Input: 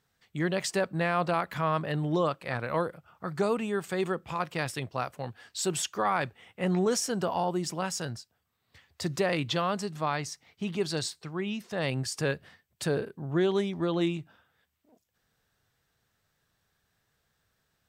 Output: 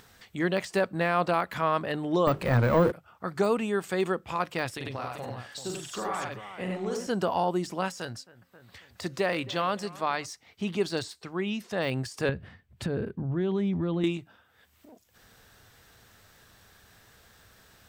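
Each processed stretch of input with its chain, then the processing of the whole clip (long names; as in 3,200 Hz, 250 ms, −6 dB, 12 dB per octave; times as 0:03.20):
0:02.27–0:02.92: low-shelf EQ 350 Hz +11 dB + mains-hum notches 50/100/150/200/250/300/350/400 Hz + power curve on the samples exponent 0.7
0:04.76–0:07.07: downward compressor 4 to 1, threshold −34 dBFS + multi-tap delay 43/90/97/139/387 ms −4/−7.5/−3.5/−17/−9.5 dB
0:07.88–0:10.26: low-shelf EQ 490 Hz −4.5 dB + hum removal 264.6 Hz, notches 2 + bucket-brigade delay 268 ms, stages 4,096, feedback 52%, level −20 dB
0:12.29–0:14.04: bass and treble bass +14 dB, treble −11 dB + downward compressor 5 to 1, threshold −26 dBFS
whole clip: de-essing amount 95%; parametric band 150 Hz −11.5 dB 0.2 octaves; upward compression, threshold −45 dBFS; level +2.5 dB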